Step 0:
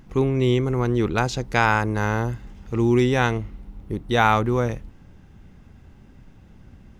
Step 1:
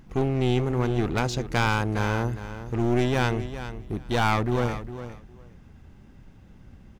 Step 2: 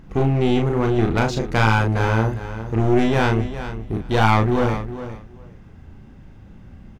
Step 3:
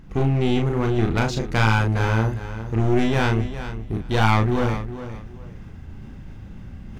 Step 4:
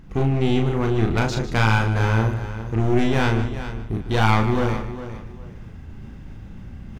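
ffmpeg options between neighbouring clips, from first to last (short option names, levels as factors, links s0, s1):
-af "aeval=exprs='clip(val(0),-1,0.0631)':c=same,aecho=1:1:407|814:0.251|0.0402,volume=0.794"
-filter_complex "[0:a]highshelf=f=3900:g=-7.5,asplit=2[s0][s1];[s1]adelay=36,volume=0.631[s2];[s0][s2]amix=inputs=2:normalize=0,volume=1.78"
-af "equalizer=f=590:t=o:w=2.6:g=-4,areverse,acompressor=mode=upward:threshold=0.0355:ratio=2.5,areverse"
-filter_complex "[0:a]asplit=2[s0][s1];[s1]adelay=151.6,volume=0.282,highshelf=f=4000:g=-3.41[s2];[s0][s2]amix=inputs=2:normalize=0"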